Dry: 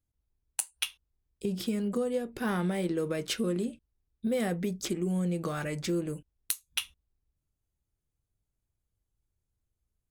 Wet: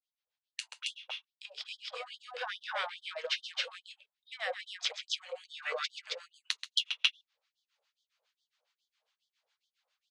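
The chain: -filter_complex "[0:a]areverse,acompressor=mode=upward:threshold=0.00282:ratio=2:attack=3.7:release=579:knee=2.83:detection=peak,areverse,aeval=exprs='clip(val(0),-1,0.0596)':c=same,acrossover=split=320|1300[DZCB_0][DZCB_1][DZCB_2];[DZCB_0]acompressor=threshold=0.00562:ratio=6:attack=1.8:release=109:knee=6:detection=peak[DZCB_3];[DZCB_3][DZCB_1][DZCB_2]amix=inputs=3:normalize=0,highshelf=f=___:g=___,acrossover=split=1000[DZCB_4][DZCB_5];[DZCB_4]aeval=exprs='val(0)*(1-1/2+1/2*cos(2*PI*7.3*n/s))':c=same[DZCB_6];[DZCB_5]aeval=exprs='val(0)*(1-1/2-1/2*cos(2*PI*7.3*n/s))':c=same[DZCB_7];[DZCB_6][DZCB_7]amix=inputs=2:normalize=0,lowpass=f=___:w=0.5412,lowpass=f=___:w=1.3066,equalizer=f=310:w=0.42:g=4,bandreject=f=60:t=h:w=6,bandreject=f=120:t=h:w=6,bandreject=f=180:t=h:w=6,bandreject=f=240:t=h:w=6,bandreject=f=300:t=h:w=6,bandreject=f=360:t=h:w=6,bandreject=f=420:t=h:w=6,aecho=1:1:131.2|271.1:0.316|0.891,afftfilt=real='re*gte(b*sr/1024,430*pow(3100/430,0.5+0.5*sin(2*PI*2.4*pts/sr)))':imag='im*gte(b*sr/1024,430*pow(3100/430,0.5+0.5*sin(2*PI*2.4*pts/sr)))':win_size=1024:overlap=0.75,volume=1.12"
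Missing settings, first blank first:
2000, 11, 4400, 4400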